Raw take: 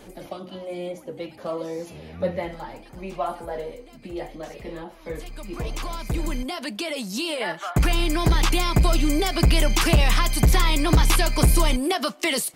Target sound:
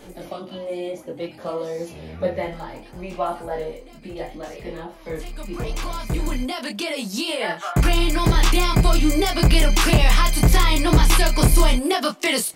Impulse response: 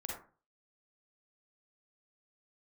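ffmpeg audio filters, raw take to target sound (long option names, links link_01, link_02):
-af "flanger=delay=22.5:depth=3.3:speed=0.65,volume=5.5dB"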